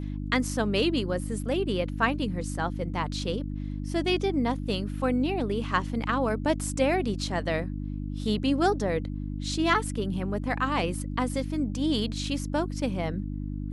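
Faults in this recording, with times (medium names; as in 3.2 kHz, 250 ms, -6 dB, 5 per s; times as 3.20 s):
hum 50 Hz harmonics 6 -33 dBFS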